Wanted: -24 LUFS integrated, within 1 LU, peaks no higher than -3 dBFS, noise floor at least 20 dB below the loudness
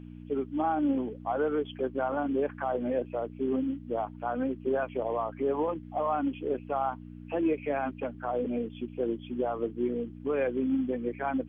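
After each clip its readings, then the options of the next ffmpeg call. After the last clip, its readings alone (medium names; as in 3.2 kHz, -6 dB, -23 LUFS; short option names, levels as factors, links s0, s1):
hum 60 Hz; highest harmonic 300 Hz; hum level -42 dBFS; loudness -31.5 LUFS; peak level -17.5 dBFS; loudness target -24.0 LUFS
-> -af "bandreject=f=60:t=h:w=4,bandreject=f=120:t=h:w=4,bandreject=f=180:t=h:w=4,bandreject=f=240:t=h:w=4,bandreject=f=300:t=h:w=4"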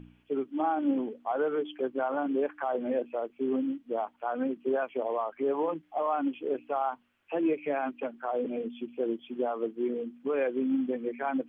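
hum not found; loudness -31.5 LUFS; peak level -17.0 dBFS; loudness target -24.0 LUFS
-> -af "volume=2.37"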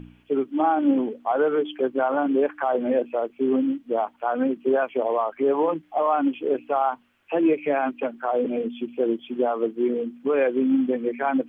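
loudness -24.0 LUFS; peak level -9.5 dBFS; noise floor -57 dBFS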